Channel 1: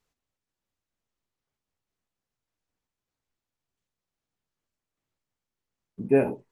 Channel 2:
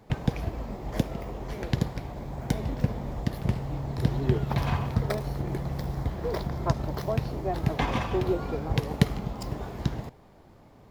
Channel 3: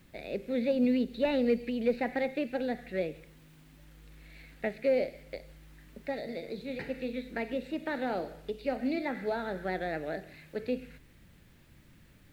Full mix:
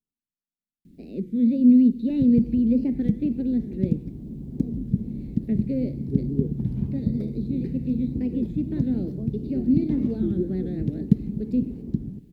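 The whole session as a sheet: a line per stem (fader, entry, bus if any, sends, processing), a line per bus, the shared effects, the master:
-16.0 dB, 0.00 s, no send, none
-4.0 dB, 2.10 s, no send, none
+2.0 dB, 0.85 s, no send, treble shelf 2.1 kHz +12 dB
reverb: none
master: FFT filter 110 Hz 0 dB, 220 Hz +13 dB, 380 Hz +2 dB, 680 Hz -22 dB, 1.2 kHz -28 dB, 4.2 kHz -21 dB; warped record 33 1/3 rpm, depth 160 cents

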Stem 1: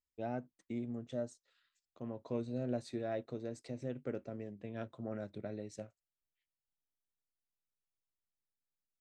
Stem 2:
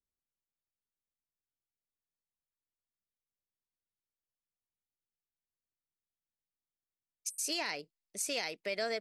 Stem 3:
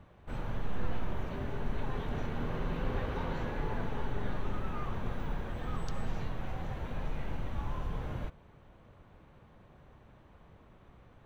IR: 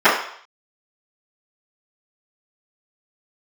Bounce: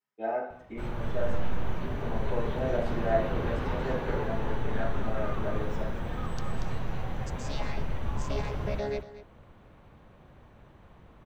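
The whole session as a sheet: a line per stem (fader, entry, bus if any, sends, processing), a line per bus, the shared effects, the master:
-4.0 dB, 0.00 s, send -10.5 dB, echo send -6.5 dB, high-pass 510 Hz 6 dB/octave; treble shelf 3.3 kHz -7.5 dB
+0.5 dB, 0.00 s, no send, echo send -15 dB, vocoder on a held chord bare fifth, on C#3
+2.5 dB, 0.50 s, no send, echo send -5.5 dB, none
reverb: on, RT60 0.60 s, pre-delay 3 ms
echo: delay 234 ms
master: none

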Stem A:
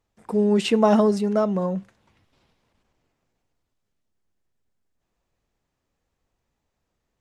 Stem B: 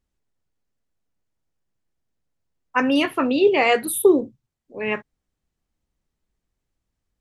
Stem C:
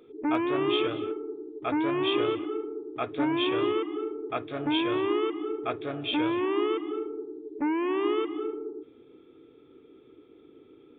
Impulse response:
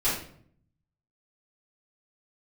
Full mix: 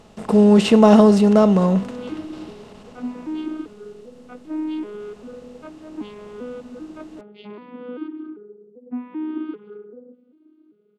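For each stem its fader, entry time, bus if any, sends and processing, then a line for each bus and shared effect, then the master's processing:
+2.0 dB, 0.00 s, no send, spectral levelling over time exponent 0.6
mute
-6.0 dB, 1.30 s, no send, vocoder on a broken chord minor triad, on G#3, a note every 392 ms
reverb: none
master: bass shelf 170 Hz +11 dB

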